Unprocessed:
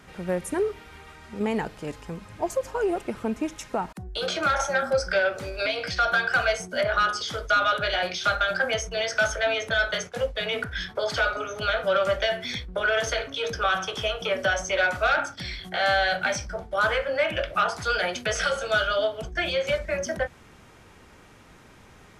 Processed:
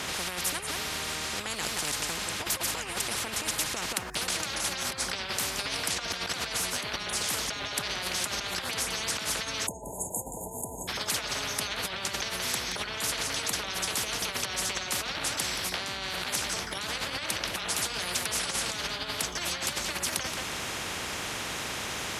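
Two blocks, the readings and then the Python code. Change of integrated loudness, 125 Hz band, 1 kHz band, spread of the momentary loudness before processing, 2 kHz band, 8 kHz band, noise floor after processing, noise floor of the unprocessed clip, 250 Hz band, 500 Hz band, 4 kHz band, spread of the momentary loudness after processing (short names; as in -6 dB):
-4.5 dB, -4.5 dB, -8.5 dB, 8 LU, -8.0 dB, +8.5 dB, -38 dBFS, -51 dBFS, -6.5 dB, -14.0 dB, +0.5 dB, 4 LU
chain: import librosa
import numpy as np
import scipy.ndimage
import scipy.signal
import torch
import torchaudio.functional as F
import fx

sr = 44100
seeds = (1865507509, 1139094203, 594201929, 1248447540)

y = x + 10.0 ** (-14.0 / 20.0) * np.pad(x, (int(175 * sr / 1000.0), 0))[:len(x)]
y = fx.over_compress(y, sr, threshold_db=-30.0, ratio=-1.0)
y = fx.spec_erase(y, sr, start_s=9.67, length_s=1.22, low_hz=1000.0, high_hz=6500.0)
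y = scipy.signal.sosfilt(scipy.signal.butter(2, 110.0, 'highpass', fs=sr, output='sos'), y)
y = fx.low_shelf(y, sr, hz=220.0, db=10.5)
y = fx.spectral_comp(y, sr, ratio=10.0)
y = y * librosa.db_to_amplitude(2.5)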